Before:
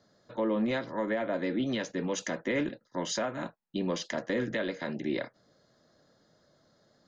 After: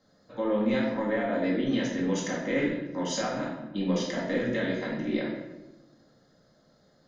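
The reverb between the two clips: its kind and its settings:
rectangular room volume 410 cubic metres, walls mixed, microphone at 2.1 metres
level −3.5 dB

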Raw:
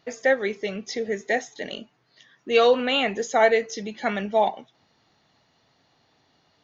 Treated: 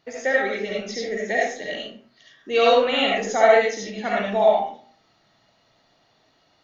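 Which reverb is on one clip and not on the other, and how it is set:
comb and all-pass reverb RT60 0.45 s, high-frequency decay 0.7×, pre-delay 30 ms, DRR −4.5 dB
level −3 dB

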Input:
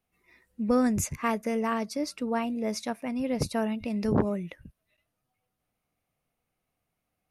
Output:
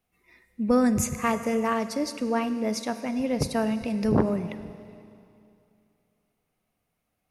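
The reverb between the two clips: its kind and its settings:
four-comb reverb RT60 2.6 s, combs from 33 ms, DRR 11 dB
level +2.5 dB

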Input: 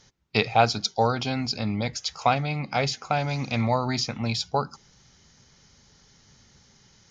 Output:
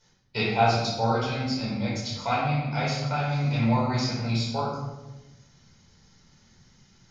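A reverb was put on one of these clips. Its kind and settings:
rectangular room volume 520 cubic metres, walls mixed, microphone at 4.8 metres
level −13 dB

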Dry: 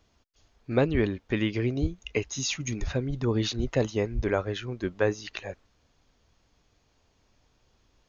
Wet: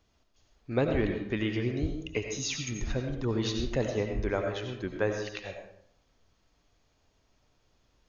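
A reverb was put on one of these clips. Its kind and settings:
comb and all-pass reverb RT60 0.64 s, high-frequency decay 0.7×, pre-delay 50 ms, DRR 3.5 dB
level −4 dB

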